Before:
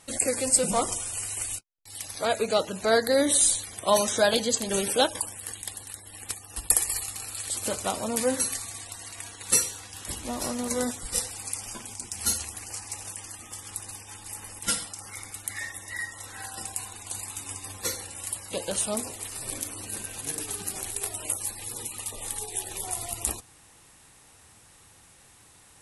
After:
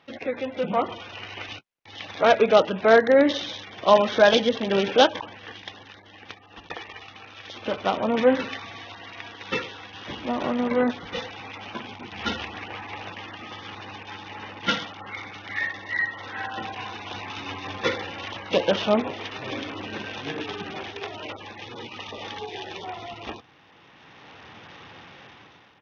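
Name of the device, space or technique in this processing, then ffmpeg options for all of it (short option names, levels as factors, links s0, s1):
Bluetooth headset: -af "highpass=150,dynaudnorm=f=320:g=5:m=5.62,aresample=8000,aresample=44100" -ar 48000 -c:a sbc -b:a 64k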